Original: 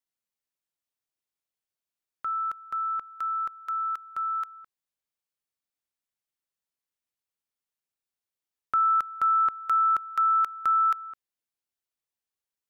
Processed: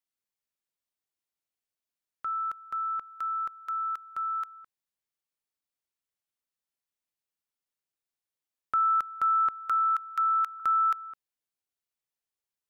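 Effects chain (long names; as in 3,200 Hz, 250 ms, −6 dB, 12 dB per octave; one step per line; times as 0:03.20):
0:09.70–0:10.60: high-pass filter 1,100 Hz 24 dB per octave
level −2 dB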